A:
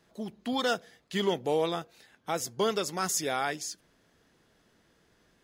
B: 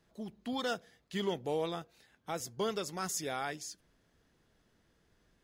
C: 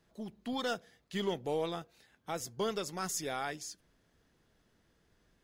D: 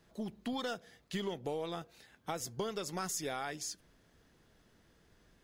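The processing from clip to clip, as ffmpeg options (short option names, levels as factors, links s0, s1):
-af "lowshelf=f=100:g=11,volume=0.447"
-af "aeval=exprs='0.075*(cos(1*acos(clip(val(0)/0.075,-1,1)))-cos(1*PI/2))+0.000944*(cos(8*acos(clip(val(0)/0.075,-1,1)))-cos(8*PI/2))':c=same"
-af "acompressor=threshold=0.0112:ratio=6,volume=1.68"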